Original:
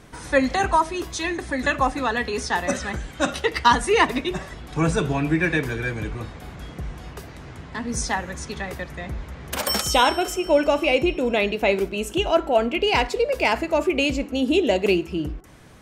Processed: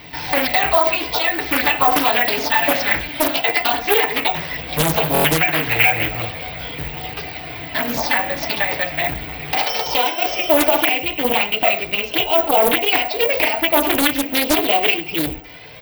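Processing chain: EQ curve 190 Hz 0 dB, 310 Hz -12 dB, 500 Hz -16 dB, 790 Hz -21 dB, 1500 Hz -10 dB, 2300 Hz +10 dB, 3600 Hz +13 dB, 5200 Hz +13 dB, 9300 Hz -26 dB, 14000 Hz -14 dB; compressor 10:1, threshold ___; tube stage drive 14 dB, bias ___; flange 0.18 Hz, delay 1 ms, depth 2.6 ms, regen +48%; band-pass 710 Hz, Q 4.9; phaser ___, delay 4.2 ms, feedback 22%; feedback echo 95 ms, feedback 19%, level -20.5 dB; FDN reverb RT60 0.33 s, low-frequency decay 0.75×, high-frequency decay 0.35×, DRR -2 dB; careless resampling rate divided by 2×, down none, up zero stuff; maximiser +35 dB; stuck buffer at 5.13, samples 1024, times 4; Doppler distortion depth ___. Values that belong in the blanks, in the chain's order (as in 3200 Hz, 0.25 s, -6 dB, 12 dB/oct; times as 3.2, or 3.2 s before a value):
-23 dBFS, 0.4, 0.43 Hz, 0.98 ms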